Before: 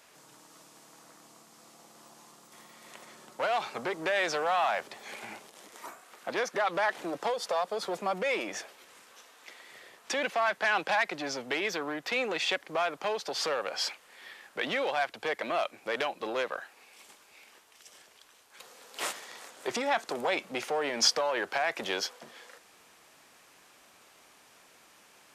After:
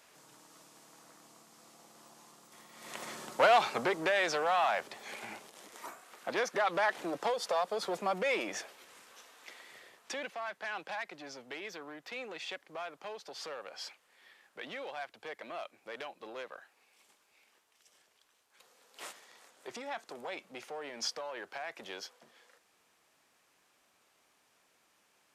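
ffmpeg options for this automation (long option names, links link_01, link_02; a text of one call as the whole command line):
ffmpeg -i in.wav -af "volume=8dB,afade=type=in:start_time=2.71:duration=0.37:silence=0.281838,afade=type=out:start_time=3.08:duration=1.1:silence=0.334965,afade=type=out:start_time=9.58:duration=0.76:silence=0.298538" out.wav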